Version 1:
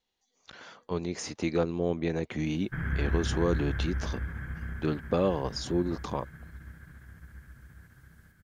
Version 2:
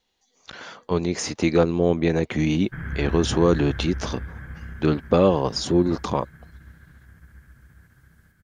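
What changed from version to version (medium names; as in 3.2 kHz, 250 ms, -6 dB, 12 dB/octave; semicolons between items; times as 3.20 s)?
speech +9.0 dB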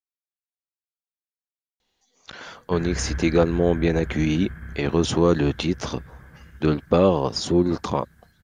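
speech: entry +1.80 s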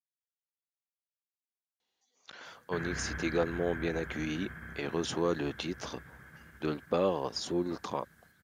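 speech -9.0 dB; master: add high-pass 330 Hz 6 dB/octave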